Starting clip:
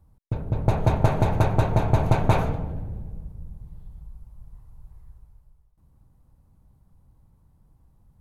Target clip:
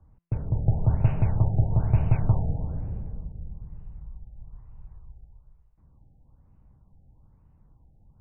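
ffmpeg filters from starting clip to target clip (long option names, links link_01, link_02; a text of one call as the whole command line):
ffmpeg -i in.wav -filter_complex "[0:a]bandreject=frequency=170.6:width_type=h:width=4,bandreject=frequency=341.2:width_type=h:width=4,bandreject=frequency=511.8:width_type=h:width=4,bandreject=frequency=682.4:width_type=h:width=4,bandreject=frequency=853:width_type=h:width=4,bandreject=frequency=1023.6:width_type=h:width=4,bandreject=frequency=1194.2:width_type=h:width=4,bandreject=frequency=1364.8:width_type=h:width=4,bandreject=frequency=1535.4:width_type=h:width=4,bandreject=frequency=1706:width_type=h:width=4,bandreject=frequency=1876.6:width_type=h:width=4,bandreject=frequency=2047.2:width_type=h:width=4,bandreject=frequency=2217.8:width_type=h:width=4,bandreject=frequency=2388.4:width_type=h:width=4,bandreject=frequency=2559:width_type=h:width=4,bandreject=frequency=2729.6:width_type=h:width=4,bandreject=frequency=2900.2:width_type=h:width=4,bandreject=frequency=3070.8:width_type=h:width=4,bandreject=frequency=3241.4:width_type=h:width=4,bandreject=frequency=3412:width_type=h:width=4,bandreject=frequency=3582.6:width_type=h:width=4,bandreject=frequency=3753.2:width_type=h:width=4,bandreject=frequency=3923.8:width_type=h:width=4,bandreject=frequency=4094.4:width_type=h:width=4,bandreject=frequency=4265:width_type=h:width=4,bandreject=frequency=4435.6:width_type=h:width=4,bandreject=frequency=4606.2:width_type=h:width=4,bandreject=frequency=4776.8:width_type=h:width=4,bandreject=frequency=4947.4:width_type=h:width=4,bandreject=frequency=5118:width_type=h:width=4,bandreject=frequency=5288.6:width_type=h:width=4,acrossover=split=170|3000[link_01][link_02][link_03];[link_02]acompressor=threshold=-44dB:ratio=2.5[link_04];[link_01][link_04][link_03]amix=inputs=3:normalize=0,afftfilt=real='re*lt(b*sr/1024,840*pow(3100/840,0.5+0.5*sin(2*PI*1.1*pts/sr)))':imag='im*lt(b*sr/1024,840*pow(3100/840,0.5+0.5*sin(2*PI*1.1*pts/sr)))':win_size=1024:overlap=0.75,volume=1dB" out.wav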